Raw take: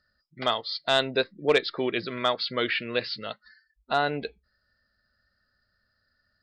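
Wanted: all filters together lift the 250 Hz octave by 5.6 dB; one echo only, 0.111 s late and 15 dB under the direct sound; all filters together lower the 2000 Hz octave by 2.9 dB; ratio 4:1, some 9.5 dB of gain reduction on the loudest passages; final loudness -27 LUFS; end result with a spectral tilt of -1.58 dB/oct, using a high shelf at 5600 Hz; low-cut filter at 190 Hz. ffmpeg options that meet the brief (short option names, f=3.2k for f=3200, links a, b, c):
-af "highpass=190,equalizer=f=250:t=o:g=8,equalizer=f=2k:t=o:g=-5,highshelf=f=5.6k:g=6,acompressor=threshold=-26dB:ratio=4,aecho=1:1:111:0.178,volume=4dB"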